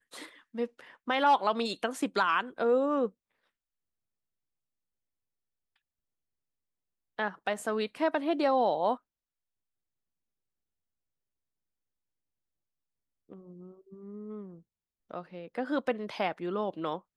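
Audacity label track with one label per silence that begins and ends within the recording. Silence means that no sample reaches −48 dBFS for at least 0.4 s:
3.090000	7.180000	silence
8.970000	13.300000	silence
14.590000	15.110000	silence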